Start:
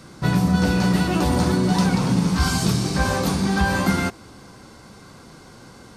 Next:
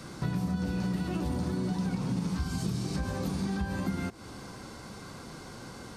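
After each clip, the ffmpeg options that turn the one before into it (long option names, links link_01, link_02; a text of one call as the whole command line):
ffmpeg -i in.wav -filter_complex "[0:a]acrossover=split=400[link_01][link_02];[link_02]alimiter=limit=-24dB:level=0:latency=1:release=133[link_03];[link_01][link_03]amix=inputs=2:normalize=0,acompressor=threshold=-32dB:ratio=3" out.wav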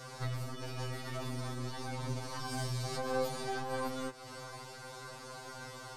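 ffmpeg -i in.wav -af "lowshelf=frequency=410:width_type=q:width=1.5:gain=-7,aeval=exprs='0.0562*(cos(1*acos(clip(val(0)/0.0562,-1,1)))-cos(1*PI/2))+0.0178*(cos(2*acos(clip(val(0)/0.0562,-1,1)))-cos(2*PI/2))':channel_layout=same,afftfilt=real='re*2.45*eq(mod(b,6),0)':imag='im*2.45*eq(mod(b,6),0)':win_size=2048:overlap=0.75,volume=2dB" out.wav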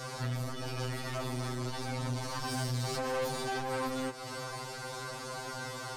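ffmpeg -i in.wav -af "aeval=exprs='(tanh(79.4*val(0)+0.35)-tanh(0.35))/79.4':channel_layout=same,volume=8.5dB" out.wav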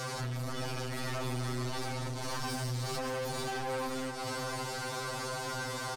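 ffmpeg -i in.wav -af "acompressor=threshold=-37dB:ratio=6,asoftclip=type=tanh:threshold=-38.5dB,aecho=1:1:543:0.316,volume=6.5dB" out.wav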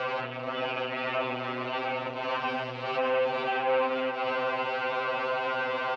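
ffmpeg -i in.wav -af "highpass=350,equalizer=frequency=360:width_type=q:width=4:gain=-5,equalizer=frequency=550:width_type=q:width=4:gain=5,equalizer=frequency=1800:width_type=q:width=4:gain=-4,equalizer=frequency=2700:width_type=q:width=4:gain=9,lowpass=frequency=2800:width=0.5412,lowpass=frequency=2800:width=1.3066,volume=8.5dB" out.wav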